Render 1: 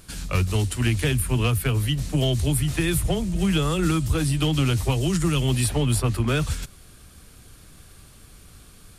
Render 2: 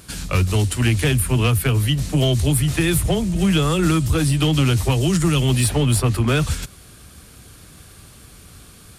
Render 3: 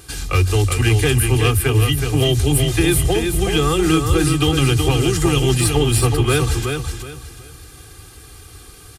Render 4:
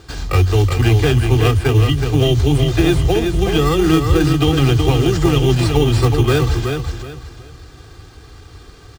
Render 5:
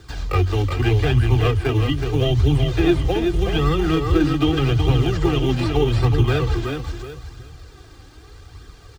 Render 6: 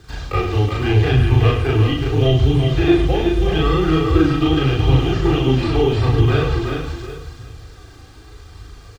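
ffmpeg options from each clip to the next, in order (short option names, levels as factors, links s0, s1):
-af "highpass=50,asoftclip=type=tanh:threshold=0.224,volume=1.88"
-filter_complex "[0:a]aecho=1:1:2.5:0.78,asplit=2[s0][s1];[s1]aecho=0:1:372|744|1116|1488:0.531|0.143|0.0387|0.0104[s2];[s0][s2]amix=inputs=2:normalize=0"
-filter_complex "[0:a]lowpass=f=6300:w=0.5412,lowpass=f=6300:w=1.3066,asplit=2[s0][s1];[s1]acrusher=samples=14:mix=1:aa=0.000001,volume=0.708[s2];[s0][s2]amix=inputs=2:normalize=0,volume=0.794"
-filter_complex "[0:a]acrossover=split=140|4500[s0][s1][s2];[s2]acompressor=threshold=0.00631:ratio=6[s3];[s0][s1][s3]amix=inputs=3:normalize=0,flanger=delay=0.5:depth=3.4:regen=45:speed=0.81:shape=triangular"
-filter_complex "[0:a]asplit=2[s0][s1];[s1]aecho=0:1:37.9|99.13|145.8:1|0.447|0.316[s2];[s0][s2]amix=inputs=2:normalize=0,acrossover=split=5500[s3][s4];[s4]acompressor=threshold=0.00398:ratio=4:attack=1:release=60[s5];[s3][s5]amix=inputs=2:normalize=0,volume=0.891"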